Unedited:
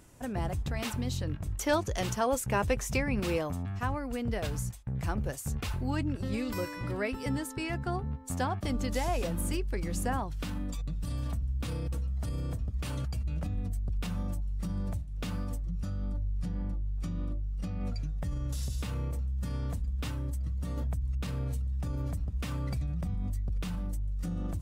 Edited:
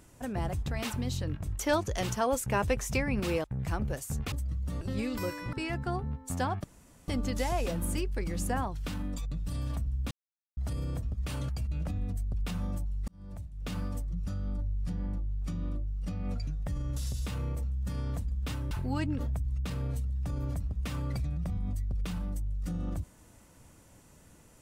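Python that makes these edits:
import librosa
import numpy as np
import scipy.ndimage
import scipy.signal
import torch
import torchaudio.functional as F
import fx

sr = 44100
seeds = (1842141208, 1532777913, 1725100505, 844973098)

y = fx.edit(x, sr, fx.cut(start_s=3.44, length_s=1.36),
    fx.swap(start_s=5.68, length_s=0.48, other_s=20.27, other_length_s=0.49),
    fx.cut(start_s=6.88, length_s=0.65),
    fx.insert_room_tone(at_s=8.64, length_s=0.44),
    fx.silence(start_s=11.67, length_s=0.46),
    fx.fade_in_span(start_s=14.64, length_s=0.69), tone=tone)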